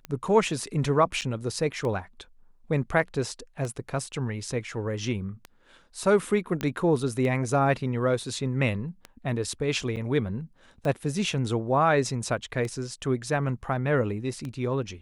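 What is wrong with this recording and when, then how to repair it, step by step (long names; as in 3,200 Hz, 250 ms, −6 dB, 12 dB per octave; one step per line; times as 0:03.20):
scratch tick 33 1/3 rpm −21 dBFS
0:01.21–0:01.22: drop-out 7.8 ms
0:06.61: click −15 dBFS
0:09.96–0:09.97: drop-out 7.4 ms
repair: click removal
repair the gap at 0:01.21, 7.8 ms
repair the gap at 0:09.96, 7.4 ms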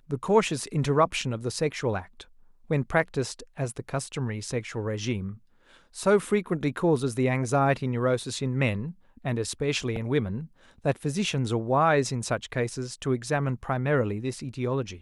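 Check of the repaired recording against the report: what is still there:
none of them is left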